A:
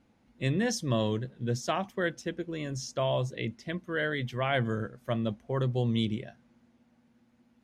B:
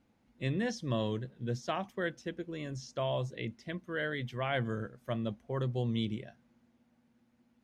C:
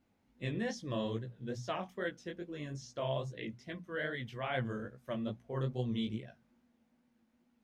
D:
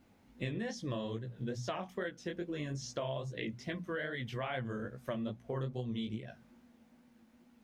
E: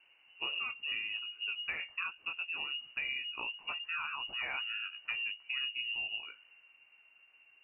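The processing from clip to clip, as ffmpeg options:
-filter_complex "[0:a]acrossover=split=5300[a][b];[b]acompressor=threshold=-54dB:ratio=4:attack=1:release=60[c];[a][c]amix=inputs=2:normalize=0,volume=-4.5dB"
-af "bandreject=f=60:t=h:w=6,bandreject=f=120:t=h:w=6,bandreject=f=180:t=h:w=6,flanger=delay=15.5:depth=7.3:speed=2.4"
-af "acompressor=threshold=-45dB:ratio=6,volume=9.5dB"
-af "lowpass=f=2.6k:t=q:w=0.5098,lowpass=f=2.6k:t=q:w=0.6013,lowpass=f=2.6k:t=q:w=0.9,lowpass=f=2.6k:t=q:w=2.563,afreqshift=-3000"

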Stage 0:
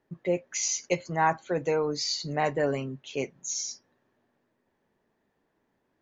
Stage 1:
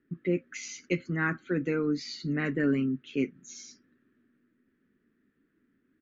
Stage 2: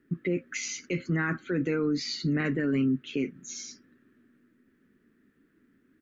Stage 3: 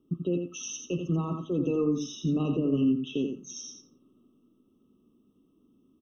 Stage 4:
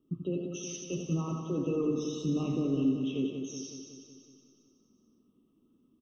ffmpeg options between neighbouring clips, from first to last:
-af "firequalizer=gain_entry='entry(130,0);entry(260,10);entry(580,-14);entry(880,-23);entry(1300,3);entry(5600,-14)':delay=0.05:min_phase=1"
-af "alimiter=level_in=2dB:limit=-24dB:level=0:latency=1:release=28,volume=-2dB,volume=6dB"
-filter_complex "[0:a]asplit=2[a][b];[b]aecho=0:1:86|172|258:0.501|0.0802|0.0128[c];[a][c]amix=inputs=2:normalize=0,afftfilt=real='re*eq(mod(floor(b*sr/1024/1300),2),0)':imag='im*eq(mod(floor(b*sr/1024/1300),2),0)':win_size=1024:overlap=0.75"
-filter_complex "[0:a]flanger=delay=6.7:depth=9.4:regen=-76:speed=1.7:shape=sinusoidal,asplit=2[a][b];[b]aecho=0:1:185|370|555|740|925|1110|1295|1480:0.447|0.264|0.155|0.0917|0.0541|0.0319|0.0188|0.0111[c];[a][c]amix=inputs=2:normalize=0"

